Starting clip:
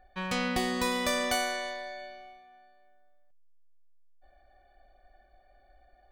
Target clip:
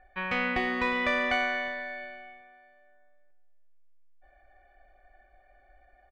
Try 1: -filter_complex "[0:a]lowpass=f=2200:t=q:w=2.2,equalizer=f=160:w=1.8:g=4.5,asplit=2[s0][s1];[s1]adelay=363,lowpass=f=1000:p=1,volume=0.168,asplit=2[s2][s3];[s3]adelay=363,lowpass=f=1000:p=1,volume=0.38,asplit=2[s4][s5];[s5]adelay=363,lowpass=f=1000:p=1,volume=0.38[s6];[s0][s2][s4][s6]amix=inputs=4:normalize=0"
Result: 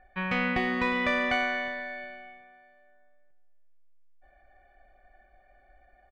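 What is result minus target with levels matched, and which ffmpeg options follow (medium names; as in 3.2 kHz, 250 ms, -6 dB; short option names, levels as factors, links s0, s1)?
125 Hz band +6.5 dB
-filter_complex "[0:a]lowpass=f=2200:t=q:w=2.2,equalizer=f=160:w=1.8:g=-6,asplit=2[s0][s1];[s1]adelay=363,lowpass=f=1000:p=1,volume=0.168,asplit=2[s2][s3];[s3]adelay=363,lowpass=f=1000:p=1,volume=0.38,asplit=2[s4][s5];[s5]adelay=363,lowpass=f=1000:p=1,volume=0.38[s6];[s0][s2][s4][s6]amix=inputs=4:normalize=0"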